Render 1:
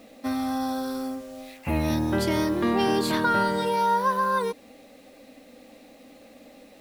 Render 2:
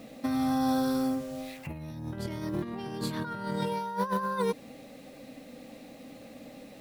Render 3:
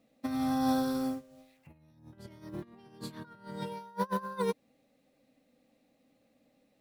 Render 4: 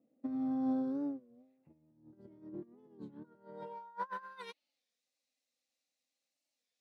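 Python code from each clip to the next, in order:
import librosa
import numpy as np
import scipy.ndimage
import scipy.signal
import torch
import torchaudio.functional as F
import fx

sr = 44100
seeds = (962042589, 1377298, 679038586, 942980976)

y1 = fx.peak_eq(x, sr, hz=140.0, db=14.5, octaves=0.77)
y1 = fx.over_compress(y1, sr, threshold_db=-26.0, ratio=-0.5)
y1 = y1 * librosa.db_to_amplitude(-4.0)
y2 = fx.upward_expand(y1, sr, threshold_db=-40.0, expansion=2.5)
y3 = fx.filter_sweep_bandpass(y2, sr, from_hz=320.0, to_hz=6100.0, start_s=3.23, end_s=4.92, q=1.6)
y3 = fx.record_warp(y3, sr, rpm=33.33, depth_cents=160.0)
y3 = y3 * librosa.db_to_amplitude(-2.0)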